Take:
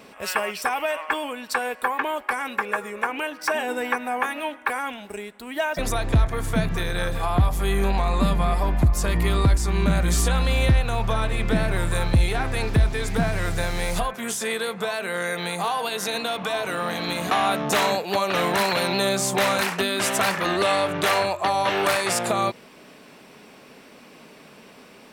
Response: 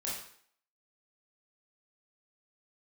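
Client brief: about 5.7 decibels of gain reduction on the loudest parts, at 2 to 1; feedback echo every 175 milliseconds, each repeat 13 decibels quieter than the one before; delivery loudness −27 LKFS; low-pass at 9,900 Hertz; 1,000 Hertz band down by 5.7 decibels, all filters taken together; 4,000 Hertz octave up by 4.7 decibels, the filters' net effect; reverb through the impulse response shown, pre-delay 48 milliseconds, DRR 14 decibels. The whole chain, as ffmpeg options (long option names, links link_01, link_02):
-filter_complex "[0:a]lowpass=9900,equalizer=frequency=1000:width_type=o:gain=-8,equalizer=frequency=4000:width_type=o:gain=6,acompressor=threshold=-24dB:ratio=2,aecho=1:1:175|350|525:0.224|0.0493|0.0108,asplit=2[link_01][link_02];[1:a]atrim=start_sample=2205,adelay=48[link_03];[link_02][link_03]afir=irnorm=-1:irlink=0,volume=-16.5dB[link_04];[link_01][link_04]amix=inputs=2:normalize=0,volume=-0.5dB"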